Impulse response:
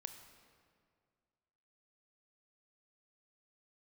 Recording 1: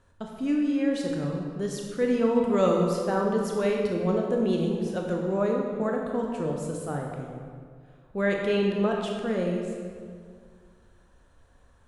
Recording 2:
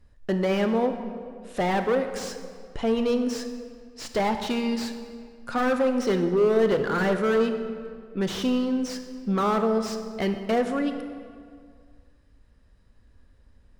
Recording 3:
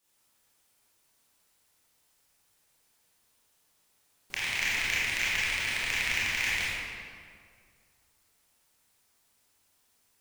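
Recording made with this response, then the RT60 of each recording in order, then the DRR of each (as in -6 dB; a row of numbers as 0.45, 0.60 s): 2; 2.1, 2.1, 2.1 s; 0.0, 7.5, -9.5 dB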